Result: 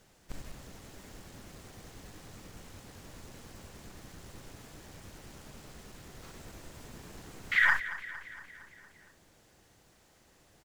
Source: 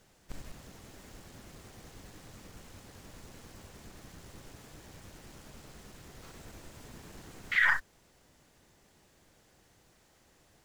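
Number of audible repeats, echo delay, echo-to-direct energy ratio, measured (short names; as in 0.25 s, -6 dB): 5, 0.23 s, -12.5 dB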